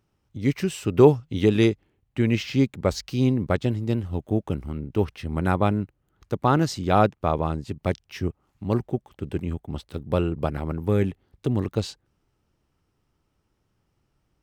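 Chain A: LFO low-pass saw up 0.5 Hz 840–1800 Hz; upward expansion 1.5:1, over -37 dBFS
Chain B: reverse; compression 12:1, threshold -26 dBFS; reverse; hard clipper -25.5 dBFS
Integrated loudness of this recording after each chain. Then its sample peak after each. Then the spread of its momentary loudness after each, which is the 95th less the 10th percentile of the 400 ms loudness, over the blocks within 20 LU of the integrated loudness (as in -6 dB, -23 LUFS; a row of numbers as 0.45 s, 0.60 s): -26.5 LUFS, -34.5 LUFS; -1.5 dBFS, -25.5 dBFS; 19 LU, 6 LU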